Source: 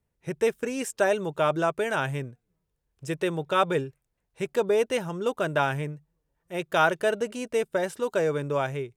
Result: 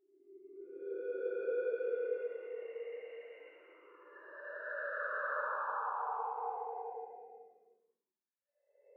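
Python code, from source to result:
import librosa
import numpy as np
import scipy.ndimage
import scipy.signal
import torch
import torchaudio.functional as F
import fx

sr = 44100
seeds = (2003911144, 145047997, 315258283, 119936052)

y = fx.sine_speech(x, sr)
y = fx.high_shelf(y, sr, hz=2400.0, db=-8.5)
y = fx.level_steps(y, sr, step_db=19)
y = fx.wah_lfo(y, sr, hz=0.84, low_hz=350.0, high_hz=2300.0, q=4.1)
y = fx.spec_paint(y, sr, seeds[0], shape='fall', start_s=5.39, length_s=0.42, low_hz=710.0, high_hz=1800.0, level_db=-40.0)
y = 10.0 ** (-23.0 / 20.0) * np.tanh(y / 10.0 ** (-23.0 / 20.0))
y = fx.paulstretch(y, sr, seeds[1], factor=4.0, window_s=0.5, from_s=4.18)
y = y + 10.0 ** (-9.0 / 20.0) * np.pad(y, (int(376 * sr / 1000.0), 0))[:len(y)]
y = F.gain(torch.from_numpy(y), 1.5).numpy()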